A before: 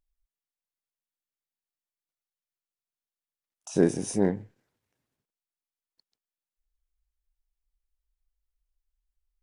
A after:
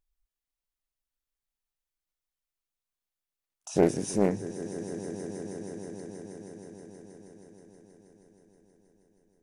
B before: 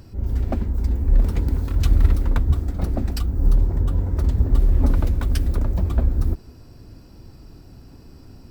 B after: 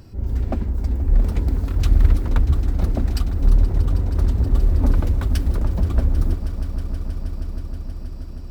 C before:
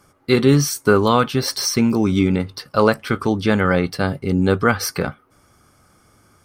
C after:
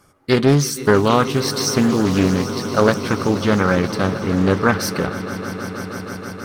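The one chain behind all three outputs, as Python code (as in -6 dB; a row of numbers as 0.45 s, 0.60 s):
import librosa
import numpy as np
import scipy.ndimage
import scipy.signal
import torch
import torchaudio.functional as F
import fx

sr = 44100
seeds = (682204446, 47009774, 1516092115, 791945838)

y = fx.echo_swell(x, sr, ms=159, loudest=5, wet_db=-16.5)
y = fx.doppler_dist(y, sr, depth_ms=0.35)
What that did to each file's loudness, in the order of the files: -5.0 LU, +0.5 LU, 0.0 LU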